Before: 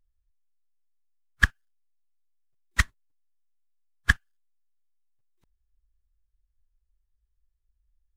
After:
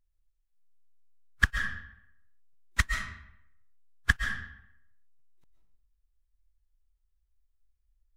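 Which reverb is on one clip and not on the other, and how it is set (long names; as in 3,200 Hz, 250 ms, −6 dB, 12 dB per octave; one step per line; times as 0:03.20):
comb and all-pass reverb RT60 0.76 s, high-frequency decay 0.75×, pre-delay 95 ms, DRR 3.5 dB
level −3.5 dB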